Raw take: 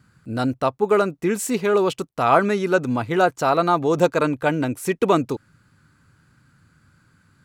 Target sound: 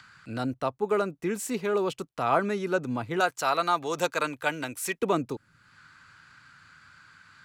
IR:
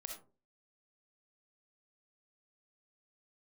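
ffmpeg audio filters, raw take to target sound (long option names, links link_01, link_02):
-filter_complex "[0:a]asettb=1/sr,asplit=3[link_01][link_02][link_03];[link_01]atrim=end=3.204[link_04];[link_02]atrim=start=3.2:end=4.99,asetpts=PTS-STARTPTS,afade=type=in:duration=0.004:curve=qsin,afade=type=out:start_time=1.786:duration=0.004:curve=qsin,tiltshelf=frequency=750:gain=-8.5[link_05];[link_03]atrim=start=4.986[link_06];[link_04][link_05]acrossfade=duration=0.004:curve1=hsin:curve2=qsin[link_07];[link_07][link_06]acrossfade=duration=0.004:curve1=qsin:curve2=hsin,acrossover=split=230|920|6200[link_08][link_09][link_10][link_11];[link_10]acompressor=mode=upward:threshold=-30dB:ratio=2.5[link_12];[link_08][link_09][link_12][link_11]amix=inputs=4:normalize=0,volume=-8dB"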